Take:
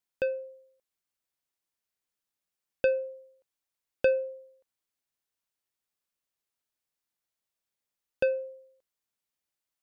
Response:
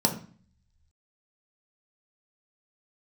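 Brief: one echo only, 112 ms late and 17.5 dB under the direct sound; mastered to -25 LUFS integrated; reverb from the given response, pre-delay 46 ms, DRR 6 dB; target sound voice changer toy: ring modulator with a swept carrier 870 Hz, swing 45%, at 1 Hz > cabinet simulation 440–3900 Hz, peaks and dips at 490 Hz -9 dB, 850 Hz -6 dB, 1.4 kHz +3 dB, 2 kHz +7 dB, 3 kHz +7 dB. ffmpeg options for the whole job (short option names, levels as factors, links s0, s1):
-filter_complex "[0:a]aecho=1:1:112:0.133,asplit=2[s0][s1];[1:a]atrim=start_sample=2205,adelay=46[s2];[s1][s2]afir=irnorm=-1:irlink=0,volume=0.133[s3];[s0][s3]amix=inputs=2:normalize=0,aeval=exprs='val(0)*sin(2*PI*870*n/s+870*0.45/1*sin(2*PI*1*n/s))':c=same,highpass=440,equalizer=f=490:t=q:w=4:g=-9,equalizer=f=850:t=q:w=4:g=-6,equalizer=f=1400:t=q:w=4:g=3,equalizer=f=2000:t=q:w=4:g=7,equalizer=f=3000:t=q:w=4:g=7,lowpass=f=3900:w=0.5412,lowpass=f=3900:w=1.3066,volume=1.68"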